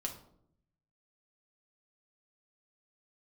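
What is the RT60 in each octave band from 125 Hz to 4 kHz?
1.2 s, 1.0 s, 0.80 s, 0.60 s, 0.45 s, 0.40 s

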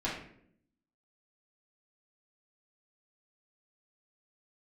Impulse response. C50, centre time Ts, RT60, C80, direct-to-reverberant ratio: 4.0 dB, 40 ms, 0.65 s, 8.0 dB, -9.0 dB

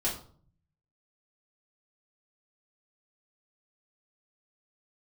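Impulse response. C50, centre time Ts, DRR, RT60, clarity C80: 7.5 dB, 28 ms, -7.0 dB, 0.50 s, 12.5 dB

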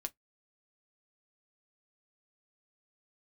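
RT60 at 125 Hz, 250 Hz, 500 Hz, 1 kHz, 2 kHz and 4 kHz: 0.20 s, 0.10 s, 0.10 s, 0.10 s, 0.10 s, 0.10 s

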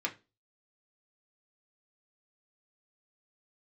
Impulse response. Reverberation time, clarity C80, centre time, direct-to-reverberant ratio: 0.25 s, 23.5 dB, 9 ms, -0.5 dB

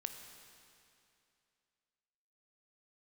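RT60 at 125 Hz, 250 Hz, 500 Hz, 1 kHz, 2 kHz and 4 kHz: 2.6 s, 2.6 s, 2.6 s, 2.6 s, 2.6 s, 2.5 s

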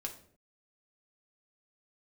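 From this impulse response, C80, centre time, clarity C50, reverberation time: 14.5 dB, 13 ms, 11.0 dB, 0.60 s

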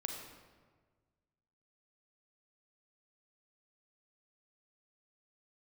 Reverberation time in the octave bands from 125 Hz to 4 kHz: 2.0 s, 1.7 s, 1.6 s, 1.4 s, 1.2 s, 0.95 s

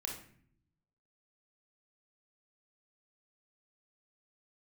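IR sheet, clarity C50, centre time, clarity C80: 4.5 dB, 30 ms, 9.5 dB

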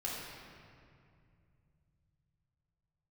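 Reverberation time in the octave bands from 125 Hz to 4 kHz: no reading, 3.6 s, 2.5 s, 2.2 s, 2.1 s, 1.5 s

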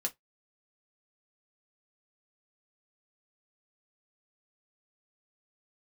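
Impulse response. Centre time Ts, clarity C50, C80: 7 ms, 24.0 dB, 38.0 dB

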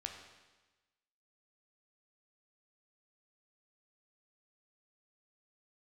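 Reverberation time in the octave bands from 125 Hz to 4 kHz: 1.2 s, 1.2 s, 1.2 s, 1.2 s, 1.2 s, 1.2 s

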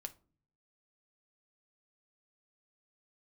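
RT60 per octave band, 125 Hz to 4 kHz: 0.95 s, 0.75 s, 0.45 s, 0.35 s, 0.25 s, 0.20 s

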